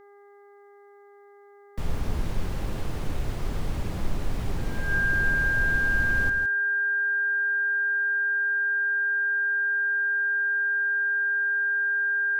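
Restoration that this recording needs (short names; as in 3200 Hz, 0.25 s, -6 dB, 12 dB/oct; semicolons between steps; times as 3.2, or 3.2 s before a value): de-hum 404.9 Hz, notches 5; notch 1600 Hz, Q 30; inverse comb 0.162 s -8 dB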